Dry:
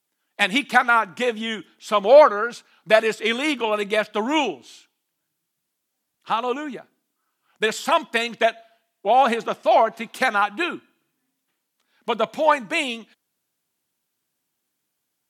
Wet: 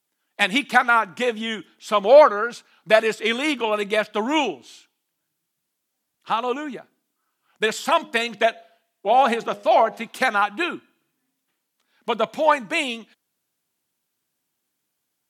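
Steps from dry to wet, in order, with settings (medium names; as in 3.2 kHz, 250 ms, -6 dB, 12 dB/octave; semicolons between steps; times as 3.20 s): 7.92–10.06 s: de-hum 102.1 Hz, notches 8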